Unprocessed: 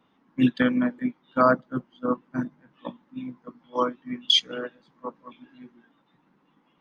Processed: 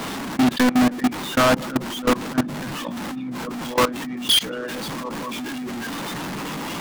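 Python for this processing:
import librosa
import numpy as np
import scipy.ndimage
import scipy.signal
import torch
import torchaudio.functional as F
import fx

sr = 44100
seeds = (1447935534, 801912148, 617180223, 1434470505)

y = x + 0.5 * 10.0 ** (-31.0 / 20.0) * np.sign(x)
y = fx.level_steps(y, sr, step_db=23)
y = fx.leveller(y, sr, passes=5)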